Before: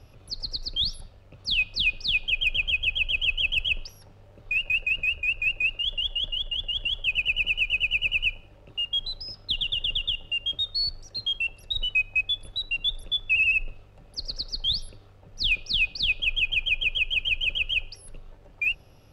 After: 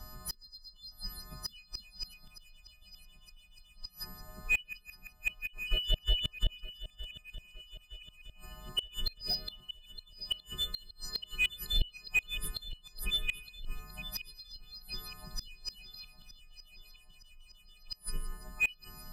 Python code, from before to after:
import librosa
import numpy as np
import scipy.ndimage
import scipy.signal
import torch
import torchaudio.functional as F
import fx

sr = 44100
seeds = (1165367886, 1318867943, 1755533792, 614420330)

p1 = fx.freq_snap(x, sr, grid_st=3)
p2 = p1 + 0.73 * np.pad(p1, (int(5.0 * sr / 1000.0), 0))[:len(p1)]
p3 = fx.over_compress(p2, sr, threshold_db=-35.0, ratio=-1.0, at=(5.47, 6.52))
p4 = fx.echo_wet_highpass(p3, sr, ms=165, feedback_pct=33, hz=5400.0, wet_db=-13)
p5 = np.clip(10.0 ** (18.0 / 20.0) * p4, -1.0, 1.0) / 10.0 ** (18.0 / 20.0)
p6 = p4 + (p5 * 10.0 ** (-12.0 / 20.0))
p7 = fx.gate_flip(p6, sr, shuts_db=-19.0, range_db=-29)
p8 = fx.env_phaser(p7, sr, low_hz=440.0, high_hz=2000.0, full_db=-21.5)
p9 = p8 + fx.echo_feedback(p8, sr, ms=915, feedback_pct=54, wet_db=-15.0, dry=0)
p10 = fx.slew_limit(p9, sr, full_power_hz=110.0)
y = p10 * 10.0 ** (3.5 / 20.0)